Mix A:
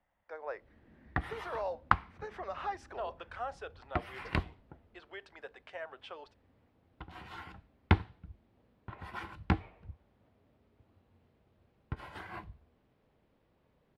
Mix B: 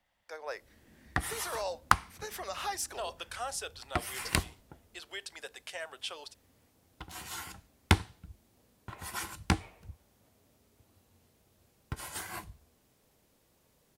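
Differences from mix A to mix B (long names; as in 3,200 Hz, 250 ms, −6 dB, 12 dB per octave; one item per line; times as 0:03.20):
speech: remove low-pass filter 1,600 Hz 12 dB per octave
second sound: remove high-frequency loss of the air 400 metres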